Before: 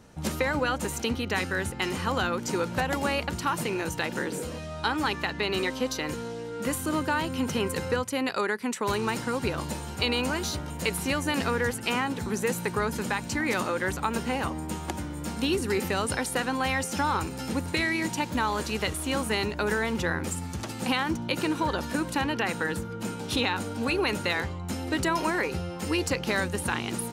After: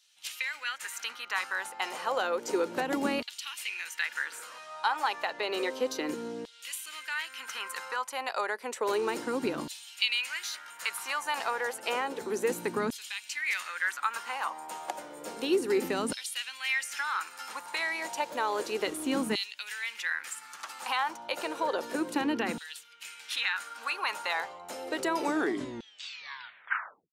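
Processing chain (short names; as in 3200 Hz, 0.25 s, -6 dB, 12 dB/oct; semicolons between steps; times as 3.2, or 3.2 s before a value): tape stop at the end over 2.02 s; LFO high-pass saw down 0.31 Hz 230–3600 Hz; gain -5 dB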